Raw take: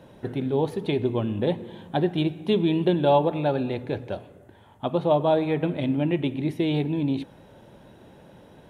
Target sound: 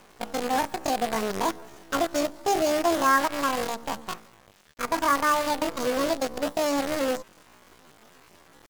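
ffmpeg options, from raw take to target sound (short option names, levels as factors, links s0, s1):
-af "acrusher=bits=5:dc=4:mix=0:aa=0.000001,asetrate=83250,aresample=44100,atempo=0.529732,volume=0.794"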